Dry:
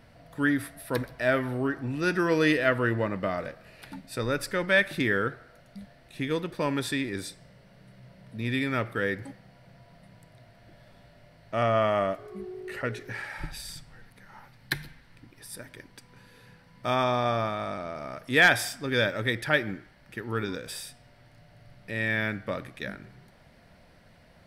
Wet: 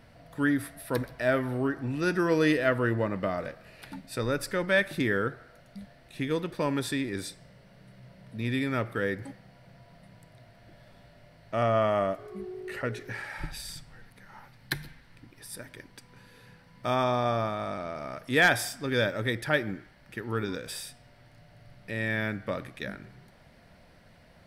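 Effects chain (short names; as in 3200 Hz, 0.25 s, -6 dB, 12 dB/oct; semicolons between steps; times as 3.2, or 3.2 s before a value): dynamic EQ 2500 Hz, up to -4 dB, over -37 dBFS, Q 0.71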